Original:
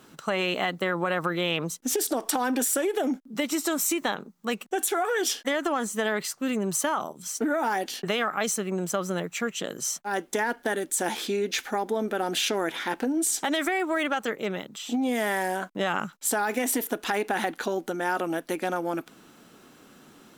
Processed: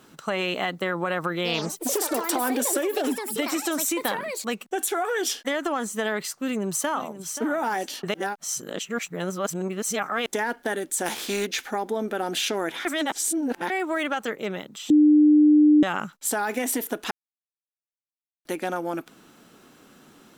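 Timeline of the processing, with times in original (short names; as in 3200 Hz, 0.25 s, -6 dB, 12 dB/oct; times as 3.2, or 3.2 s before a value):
1.36–5.36 echoes that change speed 86 ms, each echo +5 st, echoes 3, each echo -6 dB
6.31–7.32 echo throw 0.53 s, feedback 15%, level -12.5 dB
8.14–10.26 reverse
11.05–11.45 spectral contrast lowered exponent 0.64
12.85–13.7 reverse
14.9–15.83 bleep 300 Hz -12 dBFS
17.11–18.45 mute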